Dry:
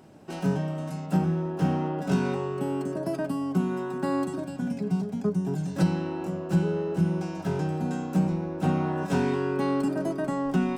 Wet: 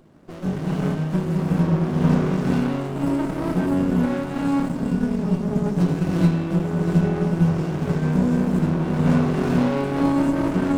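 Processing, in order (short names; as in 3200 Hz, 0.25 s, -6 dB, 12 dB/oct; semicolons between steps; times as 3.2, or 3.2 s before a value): non-linear reverb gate 0.46 s rising, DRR -6.5 dB; running maximum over 33 samples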